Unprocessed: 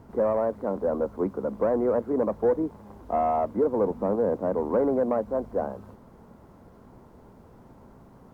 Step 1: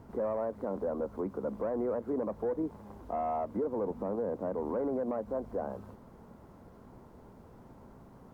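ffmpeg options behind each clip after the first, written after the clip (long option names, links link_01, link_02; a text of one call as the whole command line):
ffmpeg -i in.wav -af "alimiter=limit=-23dB:level=0:latency=1:release=116,volume=-2.5dB" out.wav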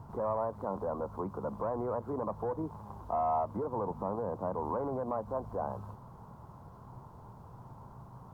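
ffmpeg -i in.wav -af "equalizer=frequency=125:width_type=o:width=1:gain=11,equalizer=frequency=250:width_type=o:width=1:gain=-7,equalizer=frequency=500:width_type=o:width=1:gain=-4,equalizer=frequency=1000:width_type=o:width=1:gain=11,equalizer=frequency=2000:width_type=o:width=1:gain=-9" out.wav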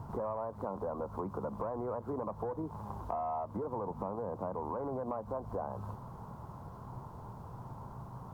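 ffmpeg -i in.wav -af "acompressor=threshold=-38dB:ratio=6,volume=4dB" out.wav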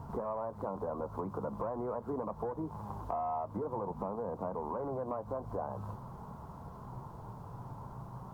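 ffmpeg -i in.wav -af "flanger=delay=4.3:depth=2.8:regen=-67:speed=0.46:shape=sinusoidal,volume=4.5dB" out.wav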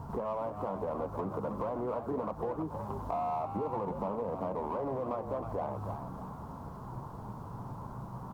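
ffmpeg -i in.wav -filter_complex "[0:a]asplit=2[link_01][link_02];[link_02]asoftclip=type=hard:threshold=-37dB,volume=-9dB[link_03];[link_01][link_03]amix=inputs=2:normalize=0,asplit=5[link_04][link_05][link_06][link_07][link_08];[link_05]adelay=315,afreqshift=82,volume=-8.5dB[link_09];[link_06]adelay=630,afreqshift=164,volume=-17.6dB[link_10];[link_07]adelay=945,afreqshift=246,volume=-26.7dB[link_11];[link_08]adelay=1260,afreqshift=328,volume=-35.9dB[link_12];[link_04][link_09][link_10][link_11][link_12]amix=inputs=5:normalize=0" out.wav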